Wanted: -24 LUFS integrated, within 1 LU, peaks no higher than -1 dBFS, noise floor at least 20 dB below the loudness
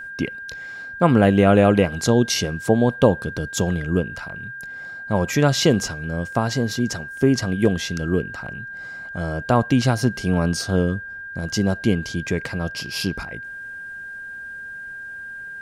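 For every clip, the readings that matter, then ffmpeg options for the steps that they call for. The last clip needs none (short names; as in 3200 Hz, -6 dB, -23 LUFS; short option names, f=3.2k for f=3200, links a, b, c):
steady tone 1600 Hz; tone level -32 dBFS; loudness -21.0 LUFS; peak -2.0 dBFS; loudness target -24.0 LUFS
-> -af "bandreject=f=1.6k:w=30"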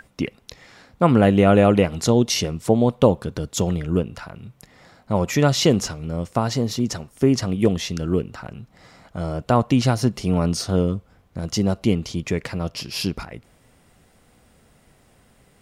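steady tone none; loudness -21.0 LUFS; peak -2.0 dBFS; loudness target -24.0 LUFS
-> -af "volume=-3dB"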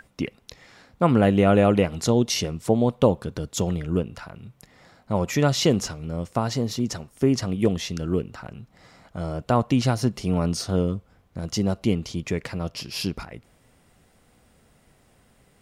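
loudness -24.0 LUFS; peak -5.0 dBFS; noise floor -60 dBFS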